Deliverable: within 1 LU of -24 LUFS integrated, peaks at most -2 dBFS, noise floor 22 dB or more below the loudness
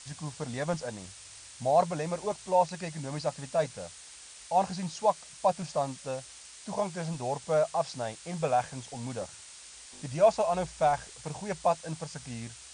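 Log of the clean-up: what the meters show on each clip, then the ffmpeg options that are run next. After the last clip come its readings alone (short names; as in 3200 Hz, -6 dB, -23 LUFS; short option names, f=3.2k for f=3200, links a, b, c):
noise floor -49 dBFS; noise floor target -53 dBFS; loudness -31.0 LUFS; peak -11.0 dBFS; loudness target -24.0 LUFS
-> -af "afftdn=nr=6:nf=-49"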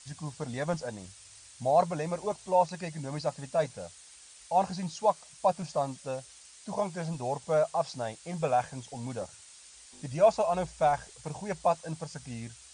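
noise floor -53 dBFS; loudness -31.0 LUFS; peak -11.0 dBFS; loudness target -24.0 LUFS
-> -af "volume=7dB"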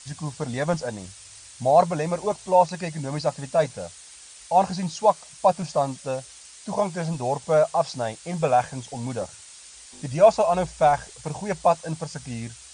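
loudness -24.0 LUFS; peak -4.0 dBFS; noise floor -46 dBFS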